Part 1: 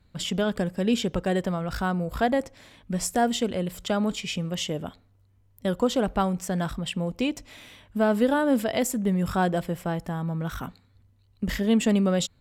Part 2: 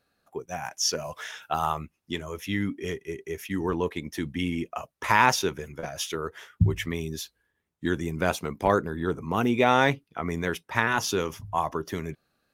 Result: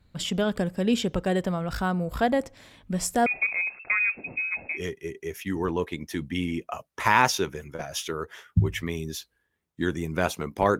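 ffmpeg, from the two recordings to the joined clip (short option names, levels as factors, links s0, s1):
-filter_complex "[0:a]asettb=1/sr,asplit=3[s0][s1][s2];[s0]atrim=end=3.264[s3];[s1]atrim=start=3.26:end=4.84,asetpts=PTS-STARTPTS,afade=t=in:d=0.004:c=qsin,afade=t=out:st=1.576:d=0.004:c=qsin,lowpass=f=2300:t=q:w=0.5098,lowpass=f=2300:t=q:w=0.6013,lowpass=f=2300:t=q:w=0.9,lowpass=f=2300:t=q:w=2.563,afreqshift=-2700[s4];[s2]atrim=start=4.836[s5];[s3][s4]acrossfade=d=0.004:c1=hsin:c2=qsin[s6];[s6][s5]acrossfade=d=0.004:c1=qsin:c2=hsin,apad=whole_dur=10.79,atrim=end=10.79,atrim=end=4.84,asetpts=PTS-STARTPTS[s7];[1:a]atrim=start=2.72:end=8.83,asetpts=PTS-STARTPTS[s8];[s7][s8]acrossfade=d=0.16:c1=tri:c2=tri"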